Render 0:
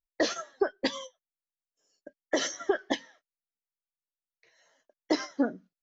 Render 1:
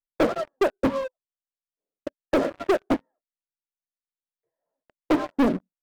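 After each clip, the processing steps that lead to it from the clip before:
Bessel low-pass filter 650 Hz, order 4
leveller curve on the samples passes 5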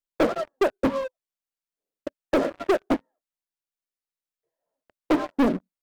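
parametric band 110 Hz −5 dB 0.58 octaves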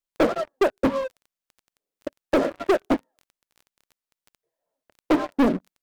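surface crackle 11 per second −40 dBFS
level +1.5 dB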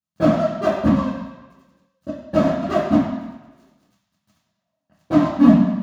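convolution reverb RT60 1.2 s, pre-delay 3 ms, DRR −14 dB
level −16 dB

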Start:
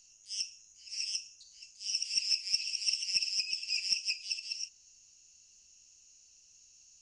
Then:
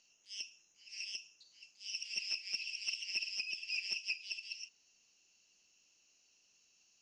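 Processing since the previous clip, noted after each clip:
three-way crossover with the lows and the highs turned down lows −20 dB, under 190 Hz, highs −22 dB, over 4,100 Hz
level +1.5 dB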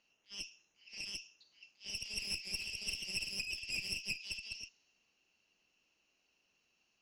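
asymmetric clip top −44.5 dBFS
low-pass that shuts in the quiet parts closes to 2,400 Hz, open at −39.5 dBFS
level +2 dB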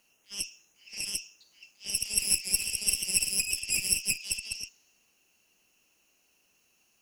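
high shelf with overshoot 6,600 Hz +14 dB, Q 1.5
level +7.5 dB

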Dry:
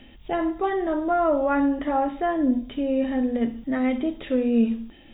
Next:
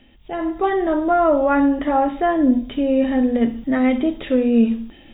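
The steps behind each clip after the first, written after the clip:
automatic gain control gain up to 11.5 dB
level −4 dB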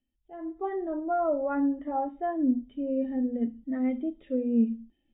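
every bin expanded away from the loudest bin 1.5 to 1
level −9 dB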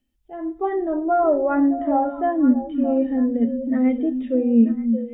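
echo through a band-pass that steps 311 ms, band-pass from 190 Hz, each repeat 1.4 octaves, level −5.5 dB
level +8.5 dB

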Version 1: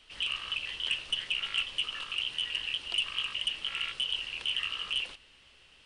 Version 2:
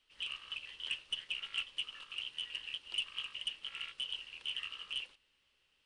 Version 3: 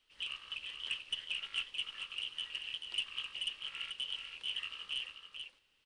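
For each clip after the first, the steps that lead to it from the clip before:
low-shelf EQ 180 Hz −4 dB; notch filter 690 Hz, Q 12; expander for the loud parts 1.5 to 1, over −47 dBFS; level −5.5 dB
single-tap delay 437 ms −6.5 dB

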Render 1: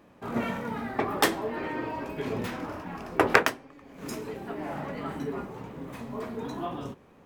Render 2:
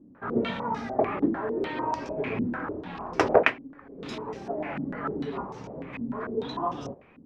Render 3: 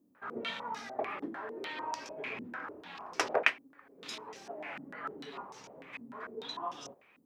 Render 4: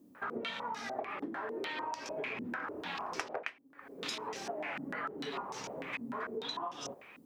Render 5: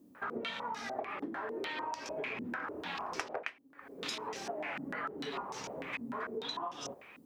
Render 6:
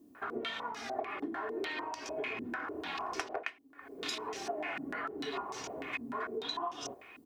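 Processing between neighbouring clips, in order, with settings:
low-pass on a step sequencer 6.7 Hz 270–5,700 Hz; level −1 dB
spectral tilt +4.5 dB per octave; level −8 dB
downward compressor 12 to 1, threshold −45 dBFS, peak gain reduction 25.5 dB; level +9.5 dB
parametric band 72 Hz +6 dB 0.29 octaves
comb filter 2.8 ms, depth 49%

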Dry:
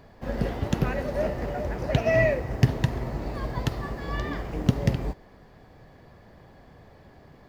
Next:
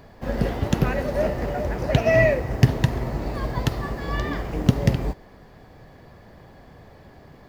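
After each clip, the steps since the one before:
high-shelf EQ 9,000 Hz +3.5 dB
level +4 dB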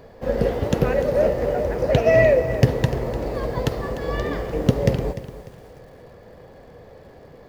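hollow resonant body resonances 490 Hz, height 12 dB, ringing for 25 ms
feedback echo at a low word length 298 ms, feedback 35%, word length 7 bits, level −14 dB
level −1 dB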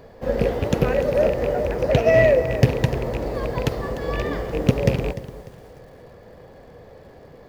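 loose part that buzzes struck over −22 dBFS, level −21 dBFS

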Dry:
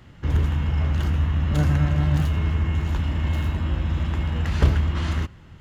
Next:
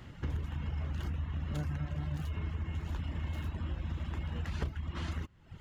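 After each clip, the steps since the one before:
reverb reduction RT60 0.7 s
downward compressor 4 to 1, threshold −34 dBFS, peak gain reduction 18.5 dB
level −1 dB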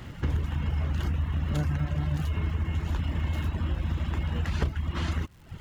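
surface crackle 400 per second −58 dBFS
level +8 dB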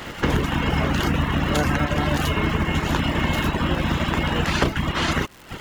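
ceiling on every frequency bin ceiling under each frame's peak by 19 dB
level +6.5 dB

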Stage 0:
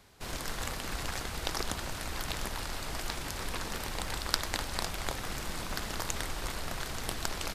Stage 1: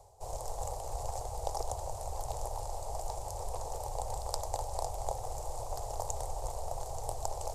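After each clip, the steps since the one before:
drawn EQ curve 120 Hz 0 dB, 190 Hz −29 dB, 300 Hz −18 dB, 490 Hz +3 dB, 830 Hz +7 dB, 1,500 Hz −26 dB, 3,500 Hz −20 dB, 7,300 Hz −1 dB, 14,000 Hz −10 dB
reversed playback
upward compression, threshold −40 dBFS
reversed playback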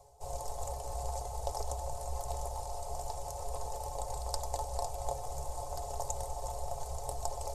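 stiff-string resonator 64 Hz, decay 0.22 s, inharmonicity 0.03
level +6 dB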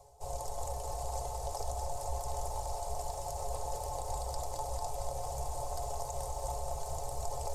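brickwall limiter −28 dBFS, peak gain reduction 10 dB
feedback echo at a low word length 224 ms, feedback 80%, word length 11 bits, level −8.5 dB
level +1 dB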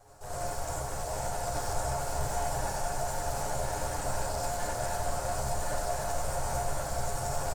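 lower of the sound and its delayed copy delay 9.8 ms
single-tap delay 1,072 ms −4.5 dB
reverb whose tail is shaped and stops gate 120 ms rising, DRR −4.5 dB

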